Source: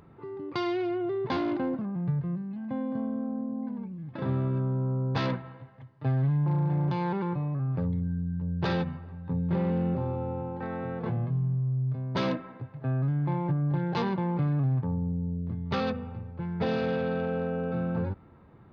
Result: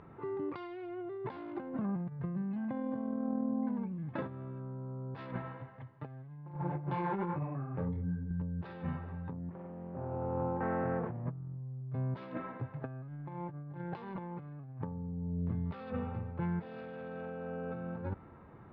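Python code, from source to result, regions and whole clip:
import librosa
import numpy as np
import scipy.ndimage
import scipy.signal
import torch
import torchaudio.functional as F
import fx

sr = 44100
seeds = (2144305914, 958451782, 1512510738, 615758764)

y = fx.chain(x, sr, fx.bass_treble(bass_db=-2, treble_db=-9),
    fx.detune_double(cents=41), at=(6.54, 8.31))
y = fx.chain(y, sr, fx.lowpass(hz=1800.0, slope=12),
    fx.doppler_dist(depth_ms=0.36), at=(9.32, 11.81))
y = scipy.signal.sosfilt(scipy.signal.butter(2, 2300.0, 'lowpass', fs=sr, output='sos'), y)
y = fx.low_shelf(y, sr, hz=440.0, db=-5.5)
y = fx.over_compress(y, sr, threshold_db=-37.0, ratio=-0.5)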